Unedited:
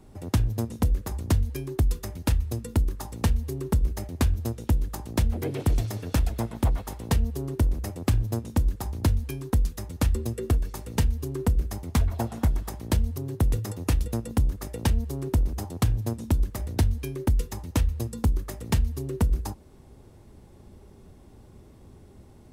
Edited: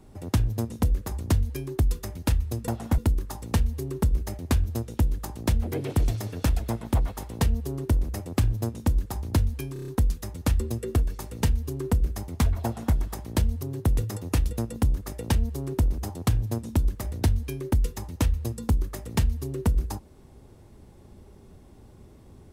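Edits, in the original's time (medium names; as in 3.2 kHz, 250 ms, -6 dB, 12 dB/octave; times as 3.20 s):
9.43 s: stutter 0.03 s, 6 plays
12.20–12.50 s: copy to 2.68 s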